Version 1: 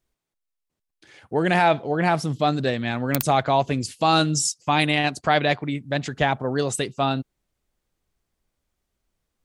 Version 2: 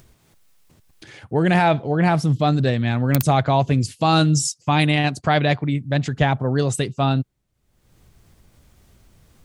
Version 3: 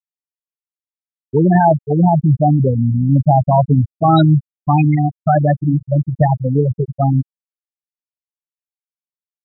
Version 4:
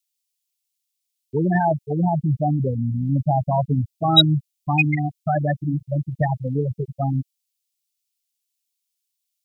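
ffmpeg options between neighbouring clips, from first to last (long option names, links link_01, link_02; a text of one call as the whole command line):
ffmpeg -i in.wav -af "equalizer=frequency=110:width_type=o:width=1.8:gain=10.5,acompressor=mode=upward:threshold=-35dB:ratio=2.5" out.wav
ffmpeg -i in.wav -filter_complex "[0:a]asplit=2[link_01][link_02];[link_02]adelay=1458,volume=-16dB,highshelf=frequency=4000:gain=-32.8[link_03];[link_01][link_03]amix=inputs=2:normalize=0,afftfilt=real='re*gte(hypot(re,im),0.501)':imag='im*gte(hypot(re,im),0.501)':win_size=1024:overlap=0.75,volume=6.5dB" out.wav
ffmpeg -i in.wav -af "aexciter=amount=13.3:drive=4.6:freq=2200,volume=-8dB" out.wav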